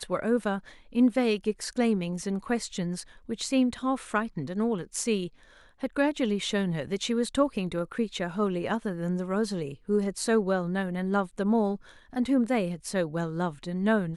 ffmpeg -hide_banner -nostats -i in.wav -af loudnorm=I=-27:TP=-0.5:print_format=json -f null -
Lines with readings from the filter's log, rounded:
"input_i" : "-28.7",
"input_tp" : "-10.8",
"input_lra" : "2.1",
"input_thresh" : "-38.8",